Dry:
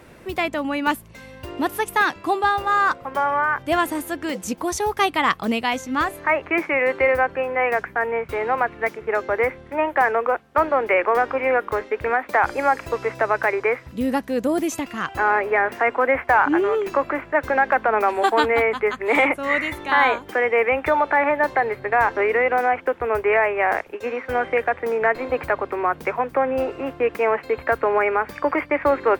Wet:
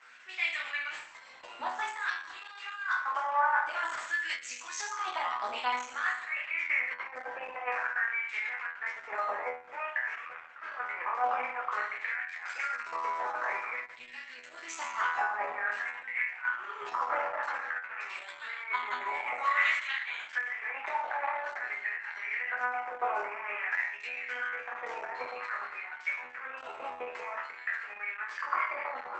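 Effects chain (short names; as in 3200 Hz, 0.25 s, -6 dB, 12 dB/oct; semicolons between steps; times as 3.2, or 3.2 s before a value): negative-ratio compressor -22 dBFS, ratio -0.5; 16.43–18.58 flutter echo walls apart 10.1 m, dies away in 0.41 s; LFO high-pass sine 0.51 Hz 840–2200 Hz; resonator bank E2 fifth, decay 0.73 s; gain +7 dB; Opus 10 kbps 48000 Hz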